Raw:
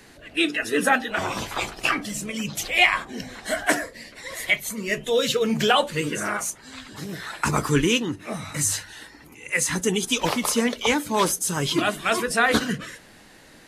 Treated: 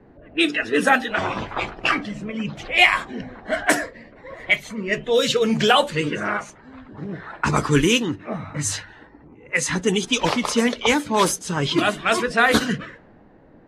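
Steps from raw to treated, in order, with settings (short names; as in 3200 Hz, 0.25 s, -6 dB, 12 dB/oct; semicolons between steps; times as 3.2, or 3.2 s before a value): low-pass opened by the level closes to 690 Hz, open at -16.5 dBFS; gain +3 dB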